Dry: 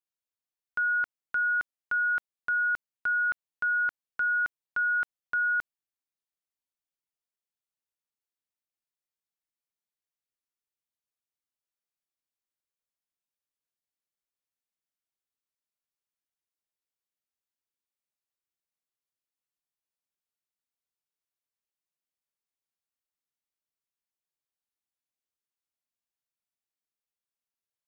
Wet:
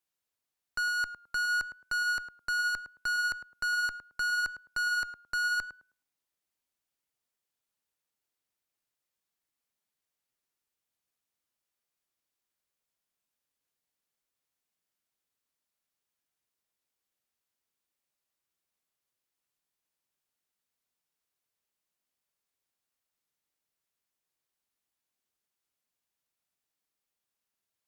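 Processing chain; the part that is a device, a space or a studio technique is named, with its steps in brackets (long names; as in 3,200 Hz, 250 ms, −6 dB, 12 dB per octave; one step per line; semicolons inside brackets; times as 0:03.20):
rockabilly slapback (tube saturation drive 35 dB, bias 0.3; tape delay 107 ms, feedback 27%, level −6 dB, low-pass 1,000 Hz)
level +6.5 dB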